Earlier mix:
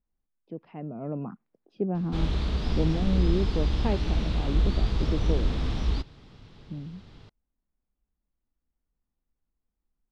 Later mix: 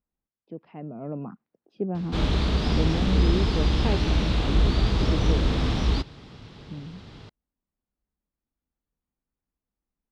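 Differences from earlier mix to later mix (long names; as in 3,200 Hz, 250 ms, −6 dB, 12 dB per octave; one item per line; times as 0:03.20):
background +7.5 dB
master: add high-pass filter 78 Hz 6 dB per octave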